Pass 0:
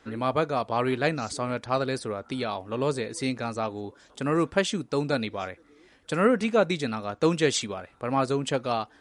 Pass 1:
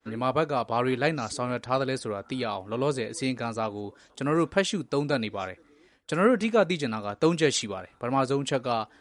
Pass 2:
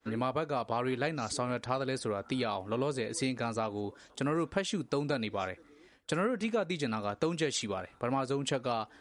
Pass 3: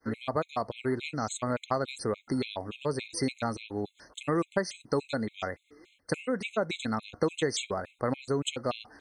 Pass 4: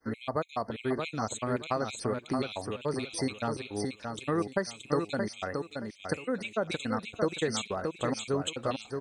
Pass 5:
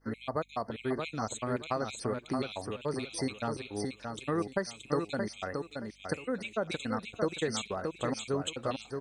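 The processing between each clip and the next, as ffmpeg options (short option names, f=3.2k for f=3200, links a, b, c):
-af "agate=range=-33dB:threshold=-52dB:ratio=3:detection=peak"
-af "acompressor=threshold=-28dB:ratio=6"
-af "afftfilt=real='re*gt(sin(2*PI*3.5*pts/sr)*(1-2*mod(floor(b*sr/1024/2100),2)),0)':imag='im*gt(sin(2*PI*3.5*pts/sr)*(1-2*mod(floor(b*sr/1024/2100),2)),0)':win_size=1024:overlap=0.75,volume=4dB"
-af "aecho=1:1:624|1248|1872:0.562|0.124|0.0272,volume=-1.5dB"
-af "aeval=exprs='val(0)+0.000562*(sin(2*PI*50*n/s)+sin(2*PI*2*50*n/s)/2+sin(2*PI*3*50*n/s)/3+sin(2*PI*4*50*n/s)/4+sin(2*PI*5*50*n/s)/5)':c=same,volume=-2dB"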